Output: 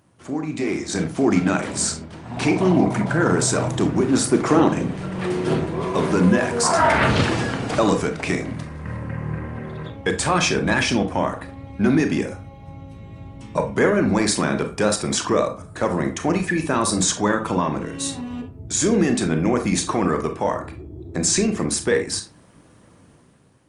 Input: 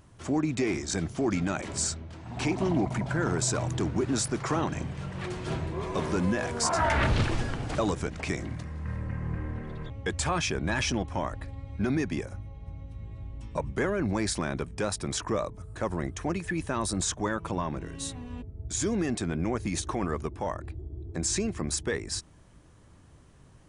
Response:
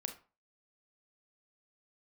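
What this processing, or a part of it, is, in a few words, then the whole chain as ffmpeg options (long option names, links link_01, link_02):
far-field microphone of a smart speaker: -filter_complex "[0:a]asplit=3[link_01][link_02][link_03];[link_01]afade=type=out:start_time=4.24:duration=0.02[link_04];[link_02]adynamicequalizer=threshold=0.00891:dfrequency=340:dqfactor=1.1:tfrequency=340:tqfactor=1.1:attack=5:release=100:ratio=0.375:range=3:mode=boostabove:tftype=bell,afade=type=in:start_time=4.24:duration=0.02,afade=type=out:start_time=5.66:duration=0.02[link_05];[link_03]afade=type=in:start_time=5.66:duration=0.02[link_06];[link_04][link_05][link_06]amix=inputs=3:normalize=0[link_07];[1:a]atrim=start_sample=2205[link_08];[link_07][link_08]afir=irnorm=-1:irlink=0,highpass=130,dynaudnorm=framelen=330:gausssize=5:maxgain=9.5dB,volume=2dB" -ar 48000 -c:a libopus -b:a 32k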